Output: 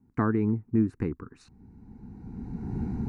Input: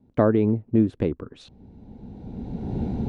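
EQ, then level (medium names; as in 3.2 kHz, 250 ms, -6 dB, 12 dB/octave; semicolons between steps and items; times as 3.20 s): bass shelf 240 Hz -4 dB; static phaser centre 1.4 kHz, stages 4; 0.0 dB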